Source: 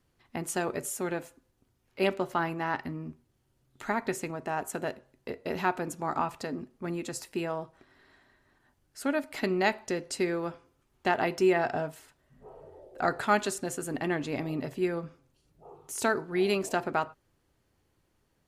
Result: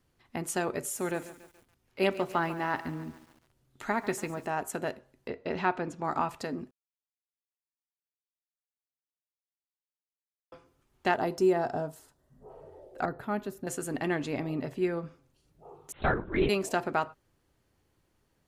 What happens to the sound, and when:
0.81–4.47 s: bit-crushed delay 142 ms, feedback 55%, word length 8-bit, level -14.5 dB
5.28–6.04 s: low-pass 4.4 kHz
6.71–10.52 s: mute
11.16–12.50 s: peaking EQ 2.3 kHz -12.5 dB 1.3 oct
13.05–13.67 s: FFT filter 160 Hz 0 dB, 3.7 kHz -17 dB, 8.7 kHz -24 dB, 13 kHz -3 dB
14.32–15.05 s: treble shelf 4 kHz -6 dB
15.92–16.49 s: LPC vocoder at 8 kHz whisper

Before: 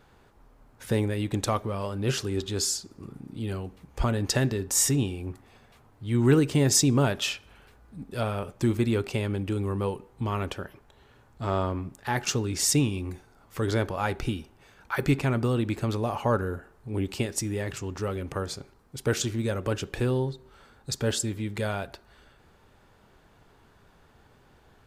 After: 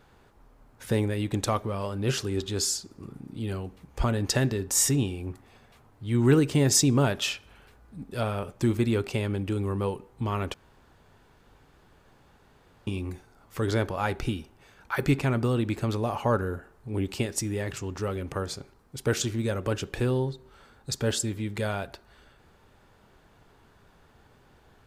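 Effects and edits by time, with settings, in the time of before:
10.54–12.87 s: room tone

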